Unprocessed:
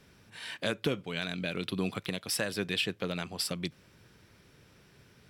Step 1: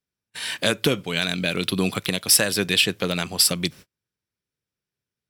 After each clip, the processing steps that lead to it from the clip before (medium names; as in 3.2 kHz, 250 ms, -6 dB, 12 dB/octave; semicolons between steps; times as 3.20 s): gate -50 dBFS, range -40 dB; treble shelf 4.8 kHz +11 dB; trim +9 dB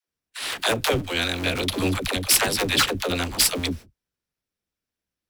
cycle switcher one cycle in 2, inverted; phase dispersion lows, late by 85 ms, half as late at 340 Hz; saturation -8 dBFS, distortion -20 dB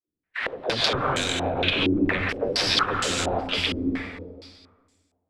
plate-style reverb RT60 1.6 s, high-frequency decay 0.9×, pre-delay 120 ms, DRR 1 dB; compression 5:1, threshold -23 dBFS, peak gain reduction 9 dB; step-sequenced low-pass 4.3 Hz 320–7400 Hz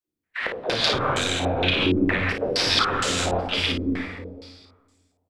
early reflections 33 ms -8 dB, 55 ms -6.5 dB